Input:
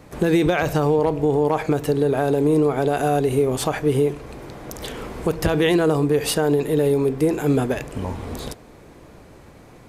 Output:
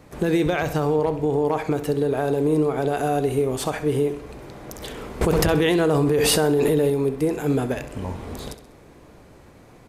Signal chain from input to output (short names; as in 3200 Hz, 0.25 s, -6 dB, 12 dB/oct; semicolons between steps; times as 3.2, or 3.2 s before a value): feedback echo 65 ms, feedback 46%, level -13.5 dB; 5.21–6.9 fast leveller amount 100%; gain -3 dB